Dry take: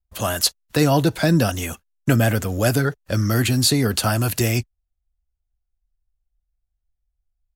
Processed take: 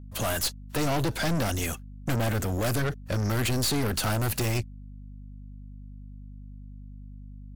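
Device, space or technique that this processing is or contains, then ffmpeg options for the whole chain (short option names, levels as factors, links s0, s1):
valve amplifier with mains hum: -af "aeval=exprs='(tanh(20*val(0)+0.4)-tanh(0.4))/20':c=same,aeval=exprs='val(0)+0.00708*(sin(2*PI*50*n/s)+sin(2*PI*2*50*n/s)/2+sin(2*PI*3*50*n/s)/3+sin(2*PI*4*50*n/s)/4+sin(2*PI*5*50*n/s)/5)':c=same,volume=1.19"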